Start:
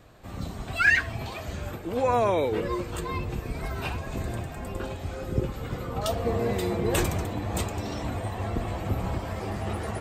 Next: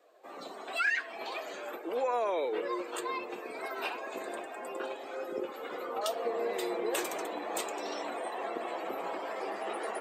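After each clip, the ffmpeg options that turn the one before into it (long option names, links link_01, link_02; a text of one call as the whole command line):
ffmpeg -i in.wav -af "highpass=frequency=360:width=0.5412,highpass=frequency=360:width=1.3066,afftdn=noise_reduction=12:noise_floor=-50,acompressor=threshold=-31dB:ratio=2.5" out.wav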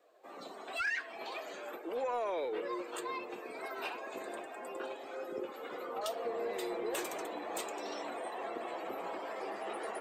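ffmpeg -i in.wav -af "lowshelf=frequency=79:gain=11.5,asoftclip=type=tanh:threshold=-23.5dB,volume=-3.5dB" out.wav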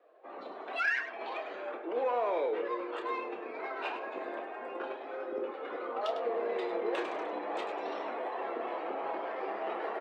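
ffmpeg -i in.wav -filter_complex "[0:a]adynamicsmooth=sensitivity=6.5:basefreq=2800,acrossover=split=220 4400:gain=0.0631 1 0.158[link_01][link_02][link_03];[link_01][link_02][link_03]amix=inputs=3:normalize=0,aecho=1:1:29.15|102:0.355|0.316,volume=4dB" out.wav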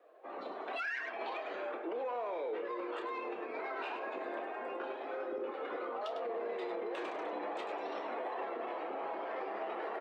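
ffmpeg -i in.wav -af "alimiter=level_in=8dB:limit=-24dB:level=0:latency=1:release=83,volume=-8dB,volume=1dB" out.wav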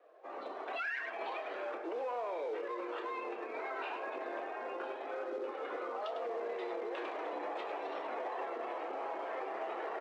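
ffmpeg -i in.wav -filter_complex "[0:a]asplit=2[link_01][link_02];[link_02]acrusher=bits=2:mode=log:mix=0:aa=0.000001,volume=-11.5dB[link_03];[link_01][link_03]amix=inputs=2:normalize=0,highpass=290,lowpass=4400,volume=-2dB" out.wav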